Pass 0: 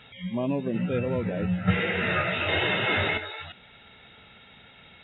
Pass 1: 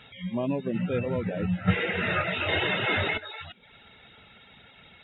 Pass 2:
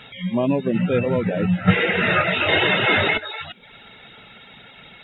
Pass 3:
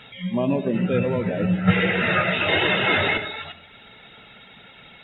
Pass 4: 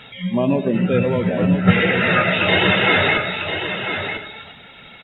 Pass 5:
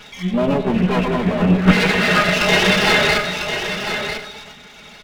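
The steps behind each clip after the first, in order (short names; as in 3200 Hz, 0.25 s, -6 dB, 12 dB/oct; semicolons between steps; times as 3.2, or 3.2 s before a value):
reverb removal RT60 0.52 s
bell 76 Hz -14 dB 0.47 oct; gain +8.5 dB
reverb RT60 0.75 s, pre-delay 62 ms, DRR 9.5 dB; gain -2.5 dB
echo 0.998 s -8 dB; gain +4 dB
minimum comb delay 4.8 ms; gain +2.5 dB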